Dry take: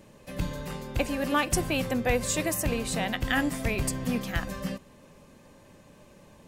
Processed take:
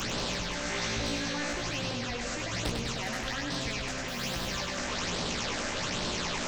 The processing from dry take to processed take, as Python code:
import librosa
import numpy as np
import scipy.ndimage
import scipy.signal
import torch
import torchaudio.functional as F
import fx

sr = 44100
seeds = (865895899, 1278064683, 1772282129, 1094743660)

y = fx.delta_mod(x, sr, bps=32000, step_db=-32.5)
y = fx.low_shelf(y, sr, hz=220.0, db=11.0, at=(2.23, 3.02))
y = fx.level_steps(y, sr, step_db=20)
y = np.clip(10.0 ** (30.5 / 20.0) * y, -1.0, 1.0) / 10.0 ** (30.5 / 20.0)
y = fx.phaser_stages(y, sr, stages=8, low_hz=120.0, high_hz=2200.0, hz=1.2, feedback_pct=35)
y = fx.room_flutter(y, sr, wall_m=3.0, rt60_s=0.39, at=(0.61, 1.53))
y = fx.quant_dither(y, sr, seeds[0], bits=12, dither='triangular', at=(4.08, 4.48))
y = fx.doubler(y, sr, ms=17.0, db=-5.0)
y = fx.echo_feedback(y, sr, ms=99, feedback_pct=47, wet_db=-6.5)
y = fx.spectral_comp(y, sr, ratio=2.0)
y = F.gain(torch.from_numpy(y), 3.5).numpy()